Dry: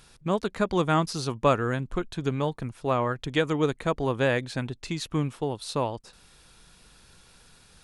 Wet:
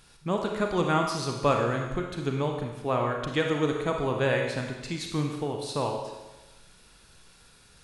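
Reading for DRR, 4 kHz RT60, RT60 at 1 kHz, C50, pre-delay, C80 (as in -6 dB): 1.5 dB, 1.1 s, 1.1 s, 3.5 dB, 34 ms, 5.5 dB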